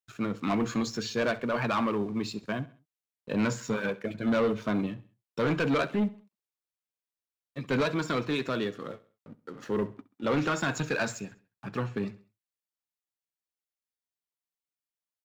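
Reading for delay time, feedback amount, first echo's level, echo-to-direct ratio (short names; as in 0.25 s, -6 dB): 66 ms, 42%, -19.0 dB, -18.0 dB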